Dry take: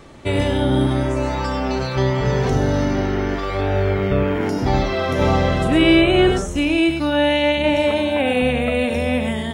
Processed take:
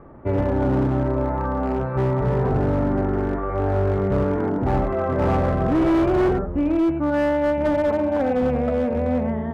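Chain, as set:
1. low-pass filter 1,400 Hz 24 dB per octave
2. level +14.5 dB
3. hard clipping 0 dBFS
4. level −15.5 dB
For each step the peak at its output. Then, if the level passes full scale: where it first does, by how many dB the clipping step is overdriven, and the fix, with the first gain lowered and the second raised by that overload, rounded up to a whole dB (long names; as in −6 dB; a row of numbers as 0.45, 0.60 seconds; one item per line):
−5.0, +9.5, 0.0, −15.5 dBFS
step 2, 9.5 dB
step 2 +4.5 dB, step 4 −5.5 dB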